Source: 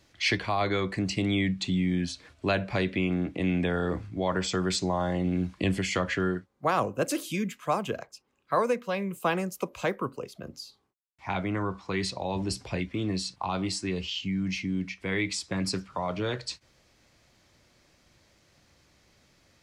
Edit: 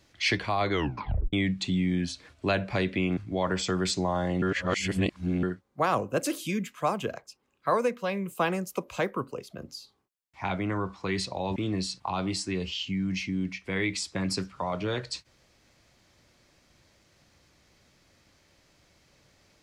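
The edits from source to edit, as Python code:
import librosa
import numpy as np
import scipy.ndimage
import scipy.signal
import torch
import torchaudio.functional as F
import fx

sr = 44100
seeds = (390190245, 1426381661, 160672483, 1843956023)

y = fx.edit(x, sr, fx.tape_stop(start_s=0.72, length_s=0.61),
    fx.cut(start_s=3.17, length_s=0.85),
    fx.reverse_span(start_s=5.27, length_s=1.01),
    fx.cut(start_s=12.41, length_s=0.51), tone=tone)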